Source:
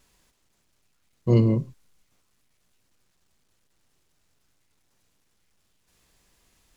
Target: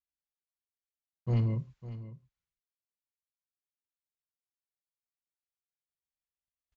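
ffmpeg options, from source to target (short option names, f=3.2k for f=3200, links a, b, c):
-filter_complex "[0:a]bass=f=250:g=7,treble=f=4k:g=-9,agate=range=-33dB:threshold=-53dB:ratio=16:detection=peak,highpass=f=93:p=1,equalizer=f=290:t=o:w=2.4:g=-13.5,aeval=exprs='clip(val(0),-1,0.1)':c=same,aresample=16000,aresample=44100,asplit=2[a][b];[b]aecho=0:1:552:0.188[c];[a][c]amix=inputs=2:normalize=0,volume=-5dB"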